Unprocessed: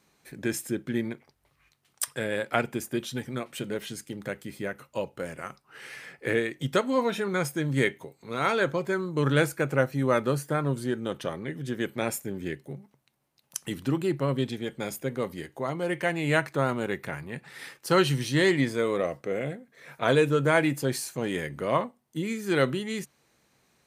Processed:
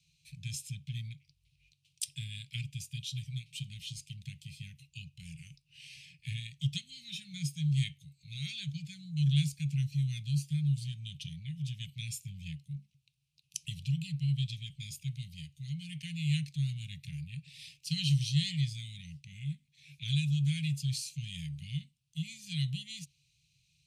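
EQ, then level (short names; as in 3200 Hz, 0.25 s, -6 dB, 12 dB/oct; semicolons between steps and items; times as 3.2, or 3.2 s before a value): dynamic EQ 2500 Hz, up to -7 dB, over -49 dBFS, Q 3.7; Chebyshev band-stop 160–2500 Hz, order 5; air absorption 60 m; +1.5 dB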